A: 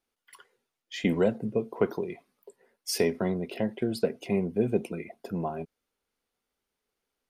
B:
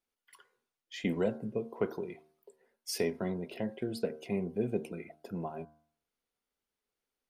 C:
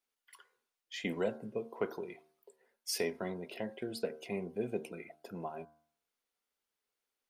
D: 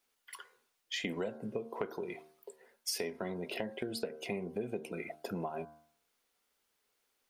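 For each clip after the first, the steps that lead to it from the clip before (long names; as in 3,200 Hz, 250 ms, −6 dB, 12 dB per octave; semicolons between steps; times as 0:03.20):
hum removal 76.87 Hz, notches 21; level −6 dB
low-shelf EQ 330 Hz −10.5 dB; level +1 dB
downward compressor 6 to 1, threshold −44 dBFS, peak gain reduction 15 dB; level +9.5 dB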